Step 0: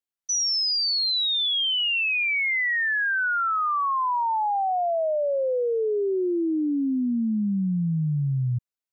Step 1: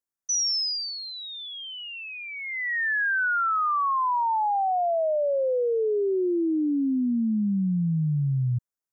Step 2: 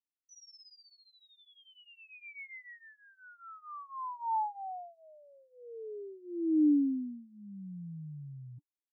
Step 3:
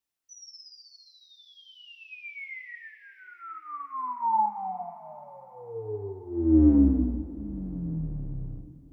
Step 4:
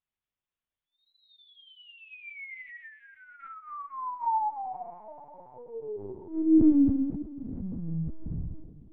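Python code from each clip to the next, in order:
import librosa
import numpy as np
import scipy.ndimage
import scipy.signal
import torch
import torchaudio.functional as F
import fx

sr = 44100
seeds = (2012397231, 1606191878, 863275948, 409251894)

y1 = fx.band_shelf(x, sr, hz=3100.0, db=-13.5, octaves=1.2)
y2 = fx.vowel_filter(y1, sr, vowel='u')
y2 = y2 + 0.85 * np.pad(y2, (int(6.8 * sr / 1000.0), 0))[:len(y2)]
y2 = y2 * 10.0 ** (-4.5 / 20.0)
y3 = fx.octave_divider(y2, sr, octaves=2, level_db=-1.0)
y3 = fx.rev_double_slope(y3, sr, seeds[0], early_s=0.46, late_s=4.9, knee_db=-18, drr_db=4.0)
y3 = y3 * 10.0 ** (6.5 / 20.0)
y4 = fx.chorus_voices(y3, sr, voices=4, hz=0.44, base_ms=27, depth_ms=3.4, mix_pct=30)
y4 = fx.lpc_vocoder(y4, sr, seeds[1], excitation='pitch_kept', order=8)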